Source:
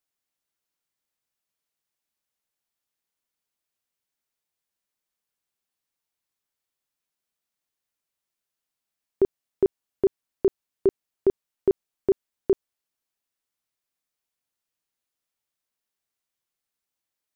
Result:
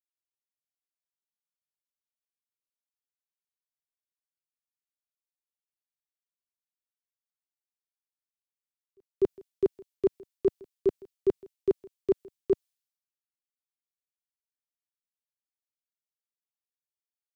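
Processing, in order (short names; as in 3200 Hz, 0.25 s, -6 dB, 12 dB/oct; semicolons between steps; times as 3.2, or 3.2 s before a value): pre-echo 0.248 s -19.5 dB; three-band expander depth 100%; gain -6 dB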